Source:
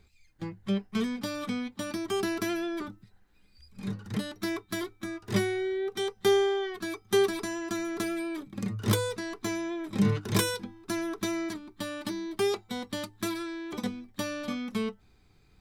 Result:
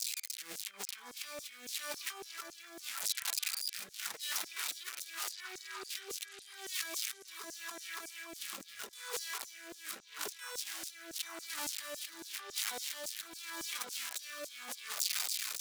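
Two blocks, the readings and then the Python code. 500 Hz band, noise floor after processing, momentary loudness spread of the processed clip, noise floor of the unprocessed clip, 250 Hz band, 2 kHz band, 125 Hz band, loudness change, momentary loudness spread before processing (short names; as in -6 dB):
-22.0 dB, -55 dBFS, 10 LU, -62 dBFS, -27.0 dB, -6.0 dB, under -35 dB, -8.0 dB, 11 LU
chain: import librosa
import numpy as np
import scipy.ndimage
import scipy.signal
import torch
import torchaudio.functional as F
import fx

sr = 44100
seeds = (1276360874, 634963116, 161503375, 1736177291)

y = x + 0.5 * 10.0 ** (-25.0 / 20.0) * np.diff(np.sign(x), prepend=np.sign(x[:1]))
y = scipy.signal.sosfilt(scipy.signal.butter(2, 93.0, 'highpass', fs=sr, output='sos'), y)
y = fx.high_shelf(y, sr, hz=11000.0, db=-6.5)
y = fx.over_compress(y, sr, threshold_db=-40.0, ratio=-1.0)
y = fx.echo_stepped(y, sr, ms=570, hz=1200.0, octaves=0.7, feedback_pct=70, wet_db=-4.5)
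y = fx.filter_lfo_highpass(y, sr, shape='saw_down', hz=3.6, low_hz=490.0, high_hz=7000.0, q=1.8)
y = fx.rotary(y, sr, hz=0.85)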